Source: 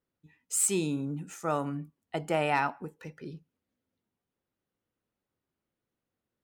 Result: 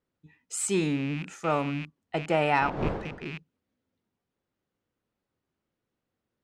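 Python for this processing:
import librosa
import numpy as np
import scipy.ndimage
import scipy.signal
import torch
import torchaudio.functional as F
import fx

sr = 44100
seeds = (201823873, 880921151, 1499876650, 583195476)

y = fx.rattle_buzz(x, sr, strikes_db=-46.0, level_db=-31.0)
y = fx.dmg_wind(y, sr, seeds[0], corner_hz=530.0, level_db=-30.0, at=(2.6, 3.25), fade=0.02)
y = fx.air_absorb(y, sr, metres=71.0)
y = y * librosa.db_to_amplitude(3.5)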